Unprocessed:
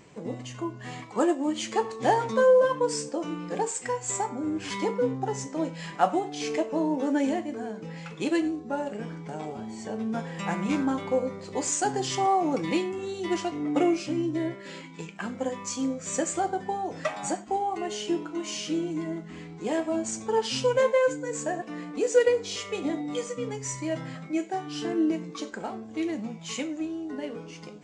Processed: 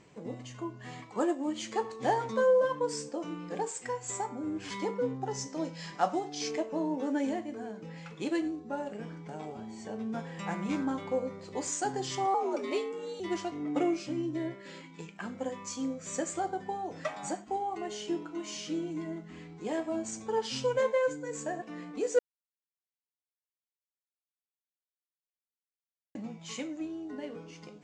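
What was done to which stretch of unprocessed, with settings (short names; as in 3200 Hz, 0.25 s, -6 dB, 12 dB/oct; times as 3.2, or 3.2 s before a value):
5.31–6.51 bell 5300 Hz +9.5 dB 0.64 oct
12.34–13.2 frequency shift +80 Hz
22.19–26.15 mute
whole clip: LPF 8800 Hz 12 dB/oct; dynamic EQ 2700 Hz, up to -3 dB, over -51 dBFS, Q 5.2; gain -5.5 dB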